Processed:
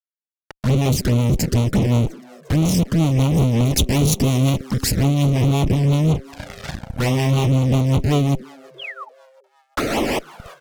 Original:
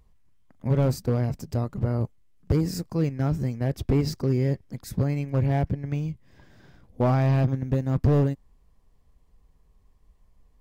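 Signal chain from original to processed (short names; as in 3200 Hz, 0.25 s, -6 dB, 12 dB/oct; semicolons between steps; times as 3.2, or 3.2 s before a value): one diode to ground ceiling -30.5 dBFS; 9.77–10.19 painted sound noise 210–1400 Hz -35 dBFS; vocal rider within 4 dB 2 s; fuzz box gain 53 dB, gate -49 dBFS; 3.65–4.61 high shelf 3700 Hz +6.5 dB; on a send: frequency-shifting echo 0.35 s, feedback 54%, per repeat +130 Hz, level -21 dB; 8.78–9.09 on the sum: painted sound fall 820–3500 Hz -27 dBFS; rotary speaker horn 5.5 Hz; 6.11–7.46 doubler 35 ms -7.5 dB; envelope flanger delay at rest 2.4 ms, full sweep at -13 dBFS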